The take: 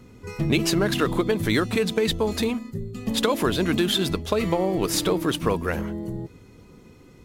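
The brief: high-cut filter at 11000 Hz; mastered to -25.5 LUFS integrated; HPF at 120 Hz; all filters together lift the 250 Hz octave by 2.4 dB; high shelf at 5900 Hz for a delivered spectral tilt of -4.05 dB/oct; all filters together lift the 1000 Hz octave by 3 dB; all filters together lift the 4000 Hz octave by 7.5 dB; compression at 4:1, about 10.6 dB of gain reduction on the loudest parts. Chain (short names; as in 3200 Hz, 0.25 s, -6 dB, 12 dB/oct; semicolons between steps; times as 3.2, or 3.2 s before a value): HPF 120 Hz; LPF 11000 Hz; bell 250 Hz +3.5 dB; bell 1000 Hz +3 dB; bell 4000 Hz +7 dB; high shelf 5900 Hz +5.5 dB; compressor 4:1, threshold -26 dBFS; gain +3.5 dB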